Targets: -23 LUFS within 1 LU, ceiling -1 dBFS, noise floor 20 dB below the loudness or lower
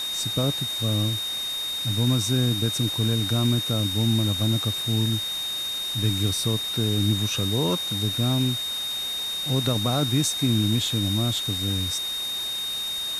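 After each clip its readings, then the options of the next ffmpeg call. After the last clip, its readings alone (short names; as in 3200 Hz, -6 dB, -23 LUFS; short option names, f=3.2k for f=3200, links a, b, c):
steady tone 3700 Hz; tone level -27 dBFS; noise floor -30 dBFS; noise floor target -44 dBFS; loudness -23.5 LUFS; peak -10.5 dBFS; loudness target -23.0 LUFS
-> -af "bandreject=f=3.7k:w=30"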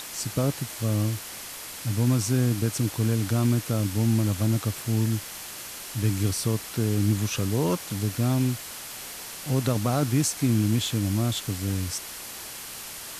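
steady tone none; noise floor -39 dBFS; noise floor target -47 dBFS
-> -af "afftdn=nr=8:nf=-39"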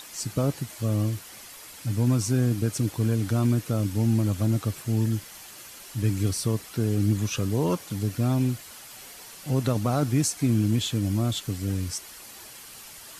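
noise floor -45 dBFS; noise floor target -47 dBFS
-> -af "afftdn=nr=6:nf=-45"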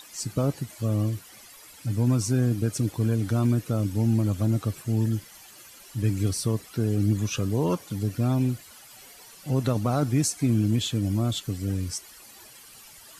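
noise floor -49 dBFS; loudness -26.5 LUFS; peak -12.0 dBFS; loudness target -23.0 LUFS
-> -af "volume=3.5dB"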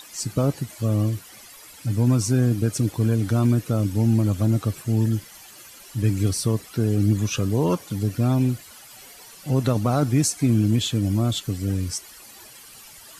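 loudness -23.0 LUFS; peak -8.5 dBFS; noise floor -46 dBFS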